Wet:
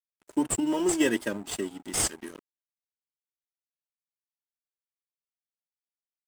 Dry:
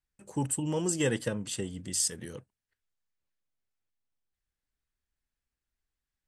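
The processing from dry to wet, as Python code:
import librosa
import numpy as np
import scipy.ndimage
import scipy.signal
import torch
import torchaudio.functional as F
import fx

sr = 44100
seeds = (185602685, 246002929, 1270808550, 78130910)

p1 = scipy.signal.sosfilt(scipy.signal.butter(4, 180.0, 'highpass', fs=sr, output='sos'), x)
p2 = p1 + 0.85 * np.pad(p1, (int(3.1 * sr / 1000.0), 0))[:len(p1)]
p3 = fx.sample_hold(p2, sr, seeds[0], rate_hz=8200.0, jitter_pct=0)
p4 = p2 + (p3 * librosa.db_to_amplitude(-6.0))
p5 = np.sign(p4) * np.maximum(np.abs(p4) - 10.0 ** (-43.0 / 20.0), 0.0)
y = fx.record_warp(p5, sr, rpm=78.0, depth_cents=100.0)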